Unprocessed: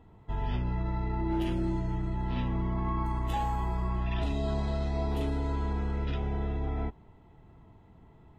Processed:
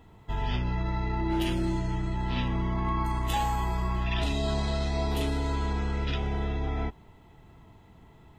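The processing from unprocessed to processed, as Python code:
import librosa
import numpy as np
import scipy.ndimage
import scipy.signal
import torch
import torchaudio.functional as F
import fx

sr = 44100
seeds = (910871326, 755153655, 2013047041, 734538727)

y = fx.high_shelf(x, sr, hz=2000.0, db=11.5)
y = y * 10.0 ** (1.5 / 20.0)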